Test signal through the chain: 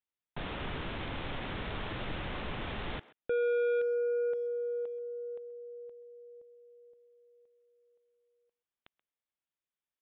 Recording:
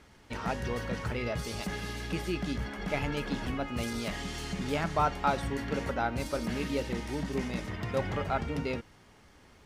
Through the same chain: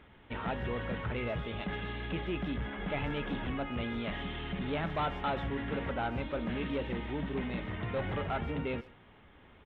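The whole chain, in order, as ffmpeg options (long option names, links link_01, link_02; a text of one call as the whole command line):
ffmpeg -i in.wav -filter_complex "[0:a]aresample=8000,asoftclip=type=tanh:threshold=-27.5dB,aresample=44100,asplit=2[link_01][link_02];[link_02]adelay=130,highpass=300,lowpass=3400,asoftclip=type=hard:threshold=-33.5dB,volume=-18dB[link_03];[link_01][link_03]amix=inputs=2:normalize=0" out.wav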